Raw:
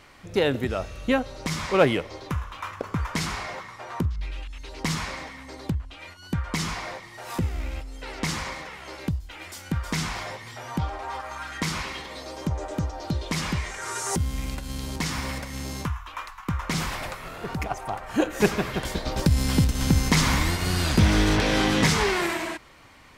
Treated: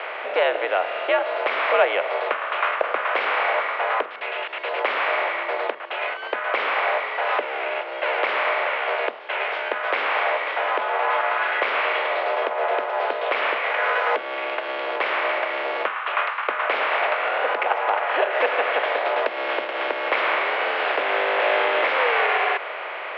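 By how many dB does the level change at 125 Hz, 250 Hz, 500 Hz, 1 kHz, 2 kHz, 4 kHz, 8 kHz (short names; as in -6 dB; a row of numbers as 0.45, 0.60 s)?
under -40 dB, -14.5 dB, +7.0 dB, +10.0 dB, +9.5 dB, +0.5 dB, under -30 dB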